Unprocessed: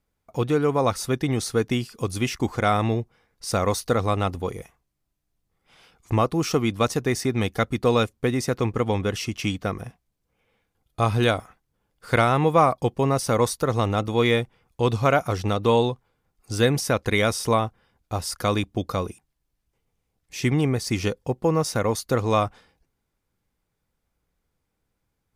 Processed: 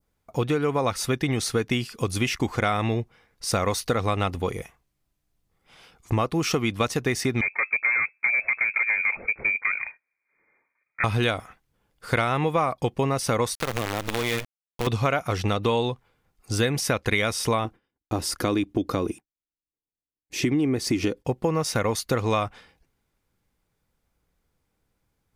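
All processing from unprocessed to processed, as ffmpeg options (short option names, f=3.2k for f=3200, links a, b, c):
-filter_complex "[0:a]asettb=1/sr,asplit=3[a][b][c];[a]atrim=end=7.414[d];[b]atrim=start=7.41:end=11.04,asetpts=PTS-STARTPTS,afade=t=in:d=0.004:c=qsin,afade=t=out:st=3.626:d=0.004:c=qsin,highpass=f=170:w=0.5412,highpass=f=170:w=1.3066,volume=23dB,asoftclip=hard,volume=-23dB,lowpass=f=2.2k:t=q:w=0.5098,lowpass=f=2.2k:t=q:w=0.6013,lowpass=f=2.2k:t=q:w=0.9,lowpass=f=2.2k:t=q:w=2.563,afreqshift=-2600[e];[c]atrim=start=11.036[f];[d][e]acrossfade=d=0.004:c1=hsin:c2=qsin[g];[g][f]acrossfade=d=0.004:c1=qsin:c2=hsin,asettb=1/sr,asplit=3[h][i][j];[h]atrim=end=13.554[k];[i]atrim=start=13.55:end=14.87,asetpts=PTS-STARTPTS,afade=t=in:d=0.004:c=qsin,afade=t=out:st=1.316:d=0.004:c=qsin,acrusher=bits=4:dc=4:mix=0:aa=0.000001,acompressor=threshold=-25dB:ratio=5:attack=3.2:release=140:knee=1:detection=peak[l];[j]atrim=start=14.866[m];[k][l]acrossfade=d=0.004:c1=hsin:c2=qsin[n];[n][m]acrossfade=d=0.004:c1=qsin:c2=hsin,asettb=1/sr,asplit=3[o][p][q];[o]atrim=end=17.654[r];[p]atrim=start=17.65:end=21.25,asetpts=PTS-STARTPTS,afade=t=in:d=0.004:c=qsin,afade=t=out:st=3.596:d=0.004:c=qsin,agate=range=-33dB:threshold=-52dB:ratio=3:release=100:detection=peak,equalizer=f=310:w=1.6:g=14,acompressor=threshold=-28dB:ratio=1.5:attack=3.2:release=140:knee=1:detection=peak[s];[q]atrim=start=21.246[t];[r][s]acrossfade=d=0.004:c1=hsin:c2=qsin[u];[u][t]acrossfade=d=0.004:c1=qsin:c2=hsin,adynamicequalizer=threshold=0.0112:dfrequency=2400:dqfactor=0.95:tfrequency=2400:tqfactor=0.95:attack=5:release=100:ratio=0.375:range=3:mode=boostabove:tftype=bell,acompressor=threshold=-23dB:ratio=4,volume=2.5dB"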